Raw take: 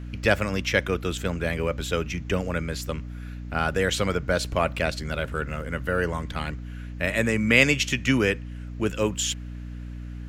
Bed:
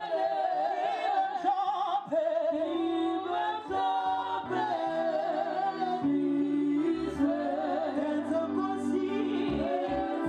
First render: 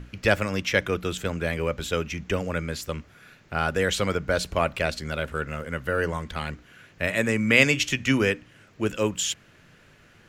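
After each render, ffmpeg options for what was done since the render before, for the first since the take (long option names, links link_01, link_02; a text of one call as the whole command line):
ffmpeg -i in.wav -af "bandreject=frequency=60:width_type=h:width=6,bandreject=frequency=120:width_type=h:width=6,bandreject=frequency=180:width_type=h:width=6,bandreject=frequency=240:width_type=h:width=6,bandreject=frequency=300:width_type=h:width=6" out.wav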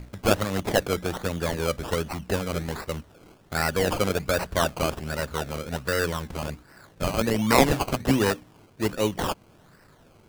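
ffmpeg -i in.wav -af "acrusher=samples=19:mix=1:aa=0.000001:lfo=1:lforange=11.4:lforate=1.3" out.wav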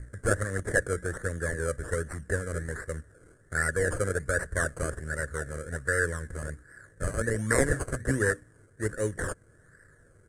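ffmpeg -i in.wav -af "firequalizer=gain_entry='entry(110,0);entry(190,-11);entry(490,-2);entry(820,-21);entry(1700,7);entry(2500,-25);entry(4500,-18);entry(8800,6);entry(14000,-26)':delay=0.05:min_phase=1" out.wav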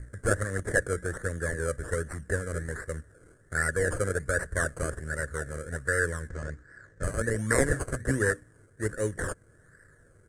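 ffmpeg -i in.wav -filter_complex "[0:a]asettb=1/sr,asplit=3[link_01][link_02][link_03];[link_01]atrim=end=6.294[link_04];[link_02]atrim=start=6.29:end=7.03,asetpts=PTS-STARTPTS,afade=type=in:duration=0.004:curve=qsin,afade=type=out:start_time=0.736:duration=0.004:curve=qsin,lowpass=frequency=6700:width=0.5412,lowpass=frequency=6700:width=1.3066[link_05];[link_03]atrim=start=7.026[link_06];[link_04][link_05]acrossfade=duration=0.004:curve1=hsin:curve2=qsin[link_07];[link_07][link_06]acrossfade=duration=0.004:curve1=qsin:curve2=hsin" out.wav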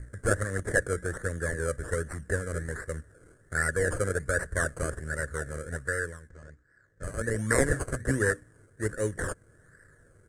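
ffmpeg -i in.wav -filter_complex "[0:a]asplit=3[link_01][link_02][link_03];[link_01]atrim=end=6.21,asetpts=PTS-STARTPTS,afade=type=out:start_time=5.72:duration=0.49:silence=0.237137[link_04];[link_02]atrim=start=6.21:end=6.89,asetpts=PTS-STARTPTS,volume=-12.5dB[link_05];[link_03]atrim=start=6.89,asetpts=PTS-STARTPTS,afade=type=in:duration=0.49:silence=0.237137[link_06];[link_04][link_05][link_06]concat=n=3:v=0:a=1" out.wav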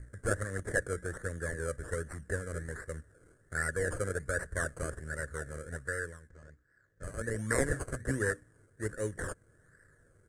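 ffmpeg -i in.wav -af "volume=-5.5dB" out.wav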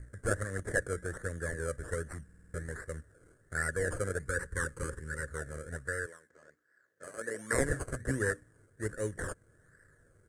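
ffmpeg -i in.wav -filter_complex "[0:a]asettb=1/sr,asplit=3[link_01][link_02][link_03];[link_01]atrim=end=4.264[link_04];[link_02]atrim=start=4.26:end=5.29,asetpts=PTS-STARTPTS,afade=type=in:duration=0.004:curve=qsin,afade=type=out:start_time=1.026:duration=0.004:curve=qsin,asuperstop=centerf=670:order=12:qfactor=2.6[link_05];[link_03]atrim=start=5.286[link_06];[link_04][link_05]acrossfade=duration=0.004:curve1=hsin:curve2=qsin[link_07];[link_07][link_06]acrossfade=duration=0.004:curve1=qsin:curve2=hsin,asettb=1/sr,asplit=3[link_08][link_09][link_10];[link_08]atrim=end=6.064[link_11];[link_09]atrim=start=6.06:end=7.53,asetpts=PTS-STARTPTS,afade=type=in:duration=0.004:curve=qsin,afade=type=out:start_time=1.466:duration=0.004:curve=qsin,highpass=340[link_12];[link_10]atrim=start=7.526[link_13];[link_11][link_12]acrossfade=duration=0.004:curve1=hsin:curve2=qsin[link_14];[link_14][link_13]acrossfade=duration=0.004:curve1=qsin:curve2=hsin,asplit=7[link_15][link_16][link_17][link_18][link_19][link_20][link_21];[link_15]atrim=end=2.292[link_22];[link_16]atrim=start=2.238:end=2.292[link_23];[link_17]atrim=start=2.238:end=2.292[link_24];[link_18]atrim=start=2.238:end=2.292[link_25];[link_19]atrim=start=2.238:end=2.292[link_26];[link_20]atrim=start=2.238:end=2.292[link_27];[link_21]atrim=start=2.538[link_28];[link_22][link_23]acrossfade=duration=0.004:curve1=hsin:curve2=hsin[link_29];[link_29][link_24]acrossfade=duration=0.004:curve1=hsin:curve2=hsin[link_30];[link_30][link_25]acrossfade=duration=0.004:curve1=hsin:curve2=hsin[link_31];[link_31][link_26]acrossfade=duration=0.004:curve1=hsin:curve2=hsin[link_32];[link_32][link_27]acrossfade=duration=0.004:curve1=hsin:curve2=hsin[link_33];[link_33][link_28]acrossfade=duration=0.004:curve1=hsin:curve2=hsin" out.wav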